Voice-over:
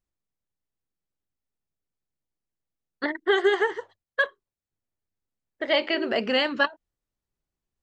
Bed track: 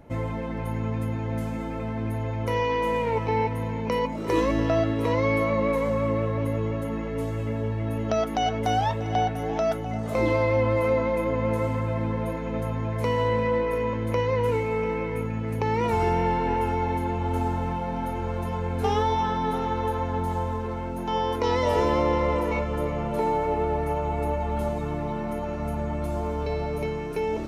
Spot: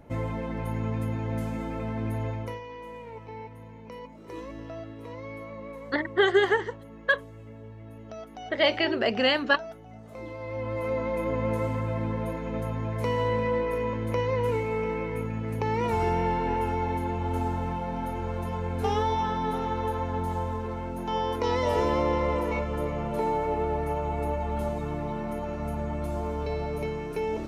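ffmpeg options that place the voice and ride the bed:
-filter_complex "[0:a]adelay=2900,volume=0dB[a];[1:a]volume=12.5dB,afade=t=out:st=2.27:d=0.33:silence=0.177828,afade=t=in:st=10.37:d=0.96:silence=0.199526[b];[a][b]amix=inputs=2:normalize=0"

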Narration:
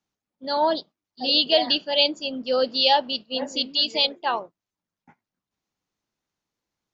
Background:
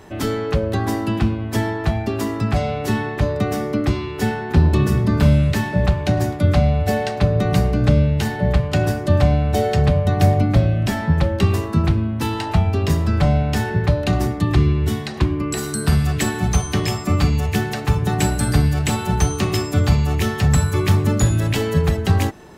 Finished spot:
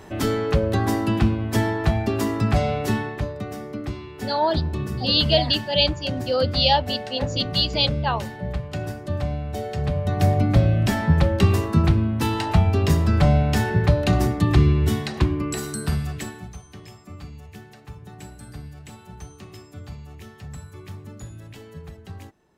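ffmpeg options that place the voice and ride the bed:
-filter_complex "[0:a]adelay=3800,volume=0dB[a];[1:a]volume=10dB,afade=t=out:st=2.75:d=0.59:silence=0.298538,afade=t=in:st=9.72:d=1.03:silence=0.298538,afade=t=out:st=15:d=1.54:silence=0.0841395[b];[a][b]amix=inputs=2:normalize=0"

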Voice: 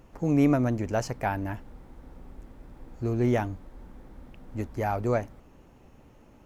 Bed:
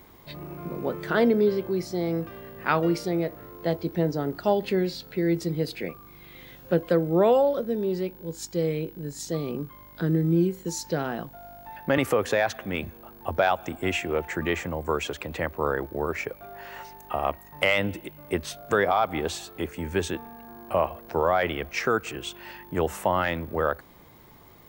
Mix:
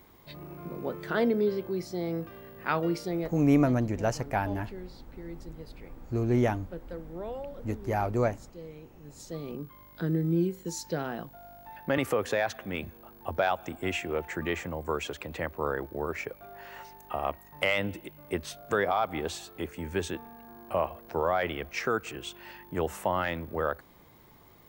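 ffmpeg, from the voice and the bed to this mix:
-filter_complex "[0:a]adelay=3100,volume=-0.5dB[a];[1:a]volume=9dB,afade=t=out:st=3.16:d=0.57:silence=0.211349,afade=t=in:st=8.95:d=0.84:silence=0.199526[b];[a][b]amix=inputs=2:normalize=0"

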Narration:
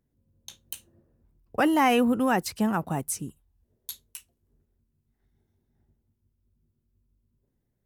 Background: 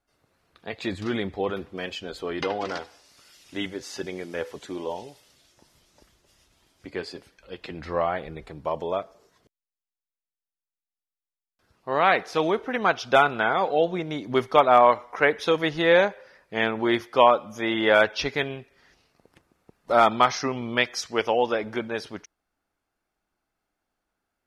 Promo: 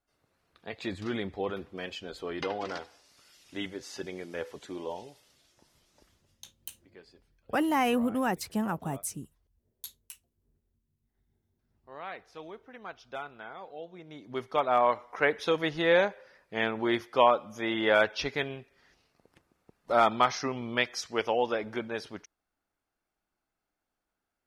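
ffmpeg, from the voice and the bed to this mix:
-filter_complex "[0:a]adelay=5950,volume=-5dB[a];[1:a]volume=10.5dB,afade=t=out:st=6.15:d=0.26:silence=0.16788,afade=t=in:st=13.91:d=1.39:silence=0.158489[b];[a][b]amix=inputs=2:normalize=0"

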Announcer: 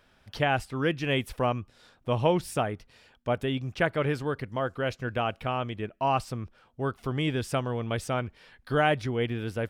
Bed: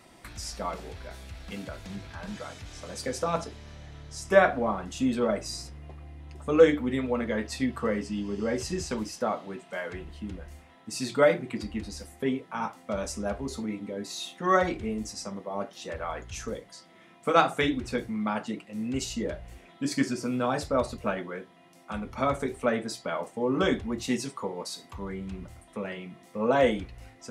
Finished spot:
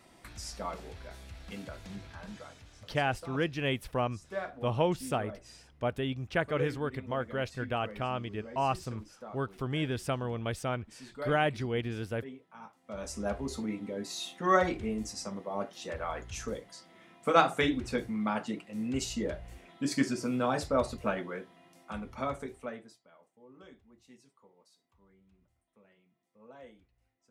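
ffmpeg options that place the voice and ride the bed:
-filter_complex "[0:a]adelay=2550,volume=-4dB[a];[1:a]volume=11dB,afade=t=out:st=2.01:d=0.91:silence=0.223872,afade=t=in:st=12.81:d=0.46:silence=0.16788,afade=t=out:st=21.55:d=1.45:silence=0.0446684[b];[a][b]amix=inputs=2:normalize=0"

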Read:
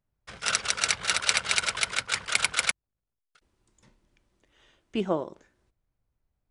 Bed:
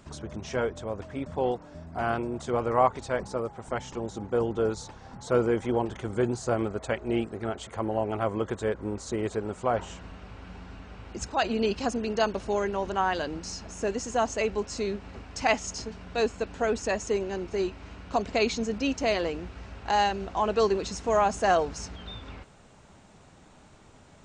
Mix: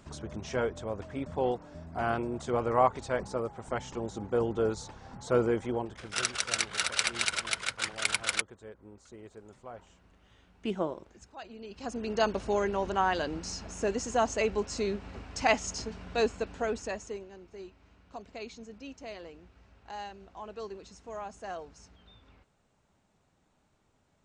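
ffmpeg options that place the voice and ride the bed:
-filter_complex "[0:a]adelay=5700,volume=-4.5dB[a];[1:a]volume=16dB,afade=t=out:st=5.44:d=0.76:silence=0.141254,afade=t=in:st=11.69:d=0.58:silence=0.125893,afade=t=out:st=16.19:d=1.11:silence=0.158489[b];[a][b]amix=inputs=2:normalize=0"

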